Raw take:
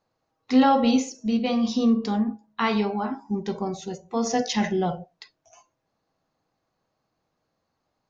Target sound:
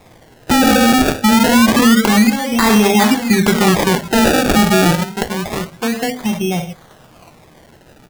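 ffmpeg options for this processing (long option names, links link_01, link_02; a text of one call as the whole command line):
ffmpeg -i in.wav -filter_complex "[0:a]asettb=1/sr,asplit=3[link_01][link_02][link_03];[link_01]atrim=end=1.794[link_04];[link_02]atrim=start=1.79:end=4.08,asetpts=PTS-STARTPTS,afade=type=in:duration=0.004:curve=qsin,afade=type=out:start_time=2.286:duration=0.004:curve=qsin,acrossover=split=270|3000[link_05][link_06][link_07];[link_05]acompressor=threshold=-27dB:ratio=2.5[link_08];[link_08][link_06][link_07]amix=inputs=3:normalize=0[link_09];[link_03]atrim=start=4.076[link_10];[link_04][link_09]acrossfade=duration=0.004:curve1=hsin:curve2=qsin[link_11];[link_11][link_10]acrossfade=duration=0.004:curve1=qsin:curve2=hsin,bass=frequency=250:gain=9,treble=frequency=4000:gain=11,volume=12.5dB,asoftclip=hard,volume=-12.5dB,asplit=2[link_12][link_13];[link_13]adelay=1691,volume=-19dB,highshelf=frequency=4000:gain=-38[link_14];[link_12][link_14]amix=inputs=2:normalize=0,acompressor=threshold=-47dB:ratio=2,acrusher=samples=29:mix=1:aa=0.000001:lfo=1:lforange=29:lforate=0.27,lowshelf=frequency=400:gain=-5,bandreject=frequency=50:width_type=h:width=6,bandreject=frequency=100:width_type=h:width=6,bandreject=frequency=150:width_type=h:width=6,bandreject=frequency=200:width_type=h:width=6,bandreject=frequency=250:width_type=h:width=6,alimiter=level_in=32dB:limit=-1dB:release=50:level=0:latency=1,volume=-1dB" out.wav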